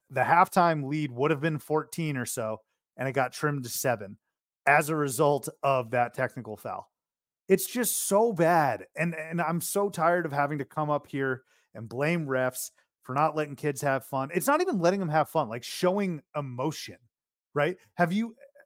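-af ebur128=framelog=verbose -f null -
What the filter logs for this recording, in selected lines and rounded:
Integrated loudness:
  I:         -27.7 LUFS
  Threshold: -38.1 LUFS
Loudness range:
  LRA:         3.6 LU
  Threshold: -48.4 LUFS
  LRA low:   -30.4 LUFS
  LRA high:  -26.8 LUFS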